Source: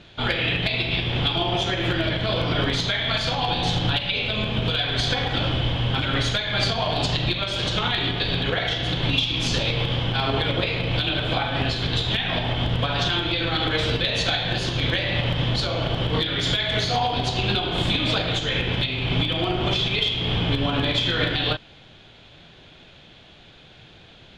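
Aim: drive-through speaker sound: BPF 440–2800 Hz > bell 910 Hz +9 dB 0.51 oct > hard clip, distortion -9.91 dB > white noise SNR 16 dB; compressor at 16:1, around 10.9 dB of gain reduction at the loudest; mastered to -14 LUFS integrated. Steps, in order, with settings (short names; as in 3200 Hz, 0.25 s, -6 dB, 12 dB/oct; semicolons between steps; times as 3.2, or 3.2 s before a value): compressor 16:1, threshold -29 dBFS; BPF 440–2800 Hz; bell 910 Hz +9 dB 0.51 oct; hard clip -34 dBFS; white noise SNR 16 dB; gain +23 dB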